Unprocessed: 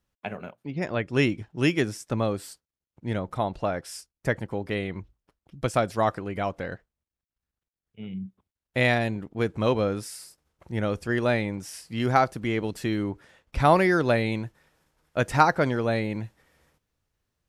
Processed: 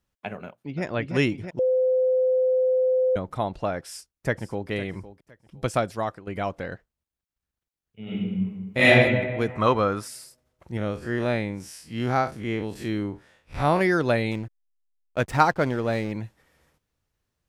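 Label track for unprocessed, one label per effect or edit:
0.440000	0.840000	echo throw 330 ms, feedback 60%, level -3.5 dB
1.590000	3.160000	bleep 513 Hz -18 dBFS
3.860000	4.690000	echo throw 510 ms, feedback 25%, level -15 dB
5.760000	6.270000	fade out, to -13 dB
8.030000	8.850000	reverb throw, RT60 1.5 s, DRR -11.5 dB
9.480000	10.080000	peaking EQ 1.2 kHz +12 dB 0.84 oct
10.770000	13.810000	spectral blur width 87 ms
14.310000	16.120000	hysteresis with a dead band play -35 dBFS

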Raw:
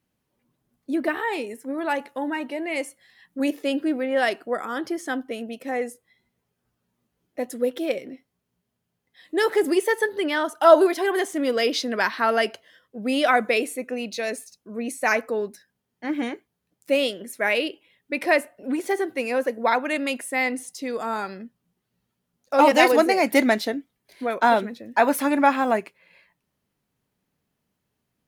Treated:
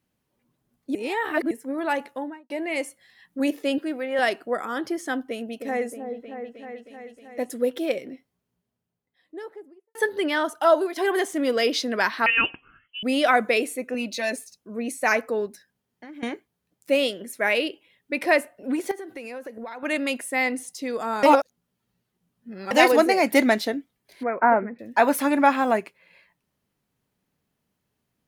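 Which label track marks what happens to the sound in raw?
0.950000	1.510000	reverse
2.060000	2.500000	studio fade out
3.780000	4.190000	high-pass 500 Hz 6 dB/octave
5.240000	7.500000	delay with an opening low-pass 313 ms, low-pass from 750 Hz, each repeat up 1 oct, level -6 dB
8.050000	9.950000	studio fade out
10.530000	10.960000	fade out quadratic, to -9 dB
12.260000	13.030000	frequency inversion carrier 3.2 kHz
13.940000	14.360000	comb 3.4 ms, depth 68%
15.460000	16.230000	compression, threshold -39 dBFS
18.910000	19.830000	compression 16:1, threshold -32 dBFS
21.230000	22.710000	reverse
24.230000	24.790000	elliptic low-pass 2.2 kHz

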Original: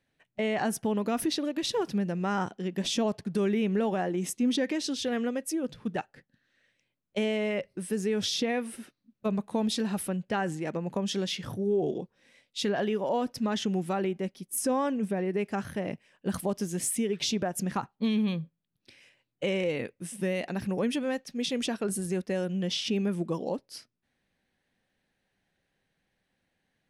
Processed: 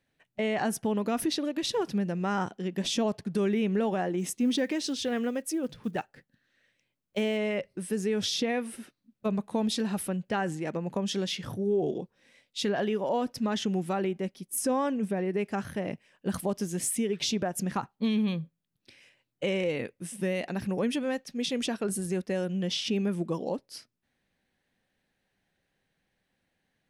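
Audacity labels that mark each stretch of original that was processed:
4.190000	7.390000	block-companded coder 7-bit

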